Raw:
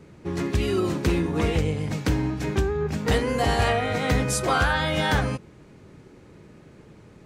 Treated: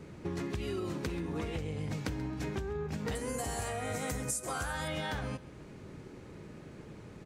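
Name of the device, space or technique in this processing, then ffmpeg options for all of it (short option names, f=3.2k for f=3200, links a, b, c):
serial compression, leveller first: -filter_complex "[0:a]asettb=1/sr,asplit=3[a][b][c];[a]atrim=end=3.154[d];[b]atrim=start=3.15:end=4.88,asetpts=PTS-STARTPTS,afade=t=in:d=0.004:c=qsin,afade=t=out:st=1.726:d=0.004:c=qsin,highshelf=f=5.5k:t=q:w=1.5:g=13[e];[c]atrim=start=4.876[f];[d][e]acrossfade=d=0.004:c1=hsin:c2=qsin[g];[g][f]acrossfade=d=0.004:c1=qsin:c2=hsin,acompressor=threshold=-23dB:ratio=2.5,acompressor=threshold=-35dB:ratio=4,aecho=1:1:134|268|402:0.141|0.0466|0.0154"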